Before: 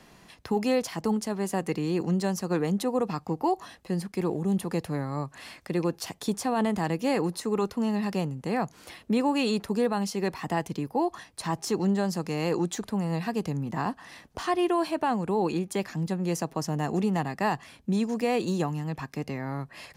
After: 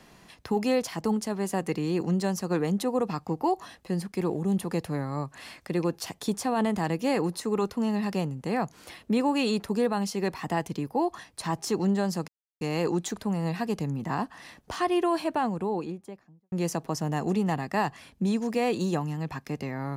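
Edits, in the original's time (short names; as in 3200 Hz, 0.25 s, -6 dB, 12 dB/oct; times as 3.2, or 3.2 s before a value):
12.28 insert silence 0.33 s
14.9–16.19 studio fade out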